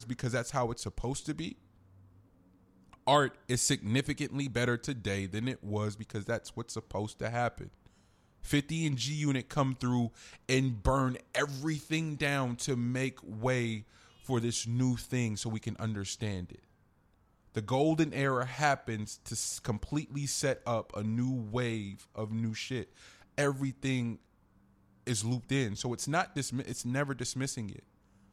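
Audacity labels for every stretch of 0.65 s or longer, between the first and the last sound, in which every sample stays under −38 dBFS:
1.520000	3.070000	silence
7.660000	8.440000	silence
16.550000	17.550000	silence
24.150000	25.070000	silence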